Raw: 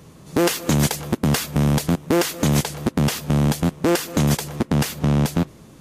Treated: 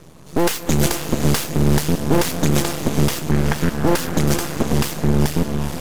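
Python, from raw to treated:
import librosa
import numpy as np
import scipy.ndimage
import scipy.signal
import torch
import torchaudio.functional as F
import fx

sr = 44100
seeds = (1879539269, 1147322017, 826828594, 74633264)

y = fx.lowpass_res(x, sr, hz=1600.0, q=3.7, at=(3.31, 3.77))
y = fx.echo_diffused(y, sr, ms=469, feedback_pct=43, wet_db=-6)
y = np.maximum(y, 0.0)
y = y * librosa.db_to_amplitude(4.5)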